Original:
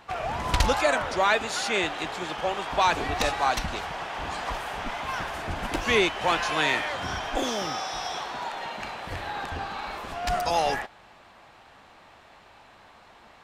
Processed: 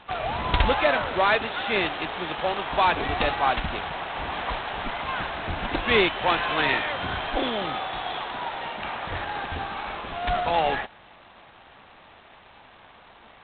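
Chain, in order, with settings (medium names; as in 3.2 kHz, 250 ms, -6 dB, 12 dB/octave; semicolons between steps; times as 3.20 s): 8.84–9.25 s: dynamic bell 1.2 kHz, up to +4 dB, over -51 dBFS, Q 0.79; trim +1.5 dB; G.726 16 kbps 8 kHz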